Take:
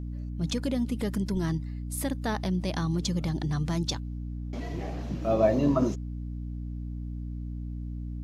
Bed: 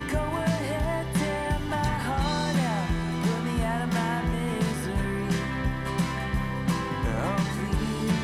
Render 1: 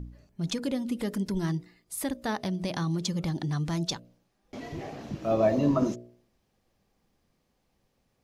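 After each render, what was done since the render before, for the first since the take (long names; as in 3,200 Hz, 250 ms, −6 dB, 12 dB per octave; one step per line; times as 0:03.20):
hum removal 60 Hz, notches 11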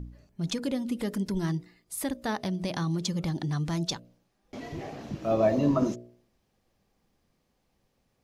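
no processing that can be heard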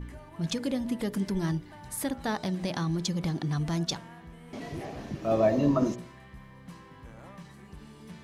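mix in bed −20.5 dB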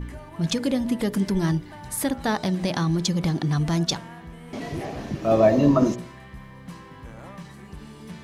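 level +6.5 dB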